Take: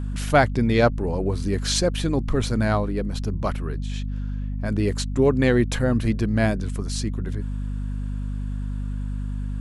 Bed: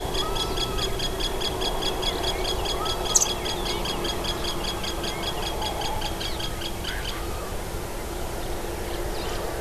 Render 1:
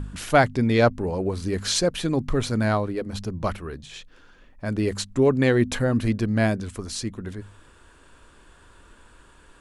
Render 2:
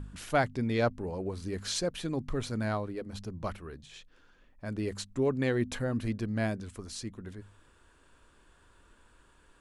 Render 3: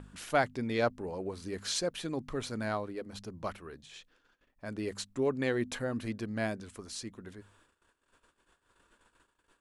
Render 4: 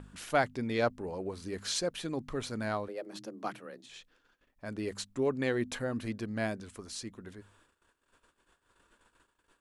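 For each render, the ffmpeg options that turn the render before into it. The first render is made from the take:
-af "bandreject=f=50:t=h:w=4,bandreject=f=100:t=h:w=4,bandreject=f=150:t=h:w=4,bandreject=f=200:t=h:w=4,bandreject=f=250:t=h:w=4"
-af "volume=-9.5dB"
-af "agate=range=-18dB:threshold=-59dB:ratio=16:detection=peak,lowshelf=f=150:g=-11.5"
-filter_complex "[0:a]asettb=1/sr,asplit=3[a][b][c];[a]atrim=end=2.884[d];[b]atrim=start=2.88:end=3.89,asetpts=PTS-STARTPTS,afade=t=in:d=0.004:c=qsin,afade=t=out:st=1.006:d=0.004:c=qsin,afreqshift=110[e];[c]atrim=start=3.886[f];[d][e]acrossfade=d=0.004:c1=hsin:c2=qsin[g];[g][f]acrossfade=d=0.004:c1=qsin:c2=hsin"

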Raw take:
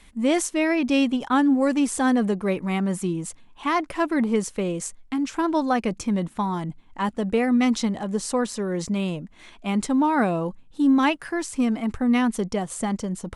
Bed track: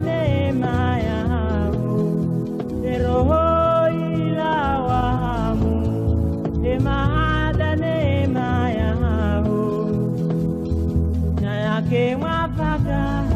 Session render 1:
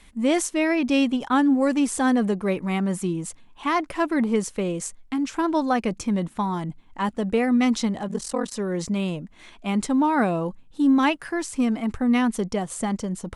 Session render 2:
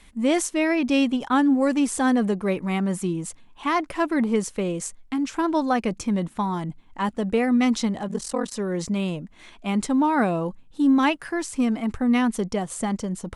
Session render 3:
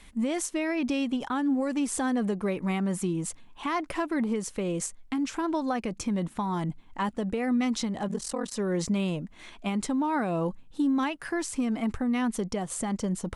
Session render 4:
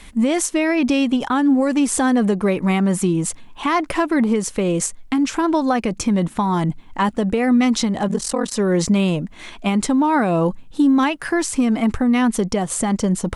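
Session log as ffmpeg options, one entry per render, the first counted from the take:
-filter_complex "[0:a]asplit=3[a][b][c];[a]afade=t=out:st=8.08:d=0.02[d];[b]aeval=exprs='val(0)*sin(2*PI*21*n/s)':c=same,afade=t=in:st=8.08:d=0.02,afade=t=out:st=8.5:d=0.02[e];[c]afade=t=in:st=8.5:d=0.02[f];[d][e][f]amix=inputs=3:normalize=0"
-af anull
-af "acompressor=threshold=-22dB:ratio=6,alimiter=limit=-19.5dB:level=0:latency=1:release=232"
-af "volume=10.5dB"

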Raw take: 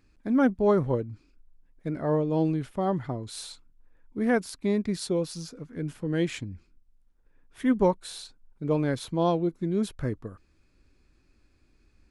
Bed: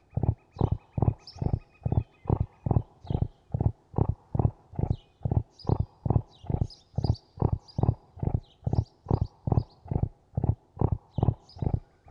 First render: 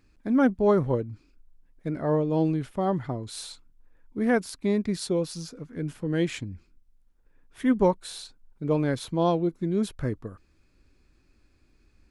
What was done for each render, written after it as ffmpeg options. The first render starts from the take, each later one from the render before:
-af "volume=1dB"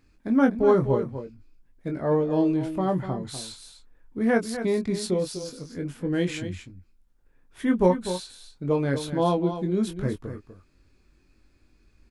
-filter_complex "[0:a]asplit=2[a][b];[b]adelay=22,volume=-5.5dB[c];[a][c]amix=inputs=2:normalize=0,aecho=1:1:247:0.299"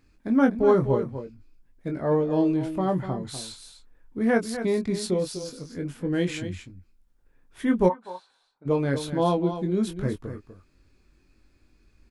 -filter_complex "[0:a]asplit=3[a][b][c];[a]afade=t=out:st=7.88:d=0.02[d];[b]bandpass=f=920:t=q:w=2.2,afade=t=in:st=7.88:d=0.02,afade=t=out:st=8.65:d=0.02[e];[c]afade=t=in:st=8.65:d=0.02[f];[d][e][f]amix=inputs=3:normalize=0"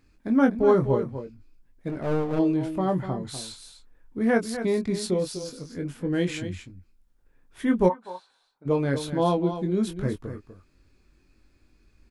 -filter_complex "[0:a]asplit=3[a][b][c];[a]afade=t=out:st=1.88:d=0.02[d];[b]aeval=exprs='clip(val(0),-1,0.0237)':c=same,afade=t=in:st=1.88:d=0.02,afade=t=out:st=2.38:d=0.02[e];[c]afade=t=in:st=2.38:d=0.02[f];[d][e][f]amix=inputs=3:normalize=0"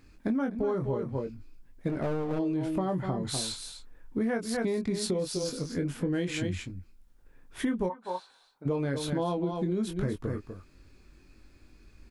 -filter_complex "[0:a]asplit=2[a][b];[b]alimiter=limit=-19dB:level=0:latency=1:release=30,volume=-2dB[c];[a][c]amix=inputs=2:normalize=0,acompressor=threshold=-26dB:ratio=12"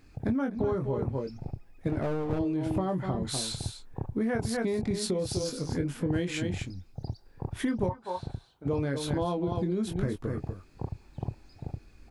-filter_complex "[1:a]volume=-10dB[a];[0:a][a]amix=inputs=2:normalize=0"

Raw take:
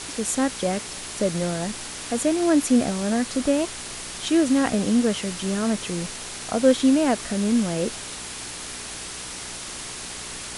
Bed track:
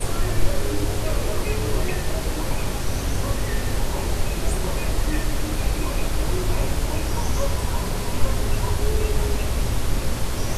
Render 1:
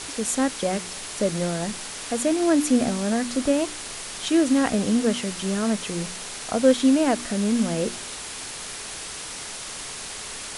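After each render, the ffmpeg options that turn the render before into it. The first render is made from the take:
-af "bandreject=f=60:t=h:w=4,bandreject=f=120:t=h:w=4,bandreject=f=180:t=h:w=4,bandreject=f=240:t=h:w=4,bandreject=f=300:t=h:w=4,bandreject=f=360:t=h:w=4"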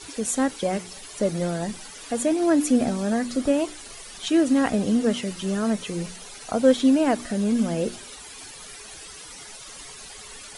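-af "afftdn=nr=13:nf=-36"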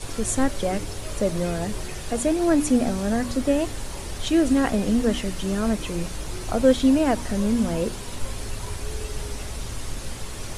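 -filter_complex "[1:a]volume=-10dB[a];[0:a][a]amix=inputs=2:normalize=0"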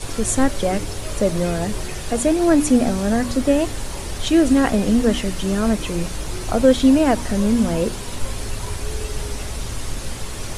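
-af "volume=4.5dB,alimiter=limit=-3dB:level=0:latency=1"

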